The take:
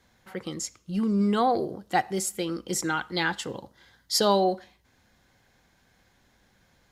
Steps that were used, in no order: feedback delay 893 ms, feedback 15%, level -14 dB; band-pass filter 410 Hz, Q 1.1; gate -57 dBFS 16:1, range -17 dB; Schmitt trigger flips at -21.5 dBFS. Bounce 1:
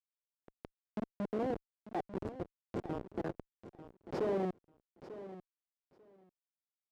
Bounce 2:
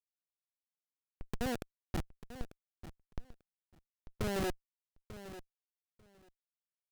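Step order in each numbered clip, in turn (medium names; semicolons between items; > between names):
Schmitt trigger > band-pass filter > gate > feedback delay; band-pass filter > Schmitt trigger > gate > feedback delay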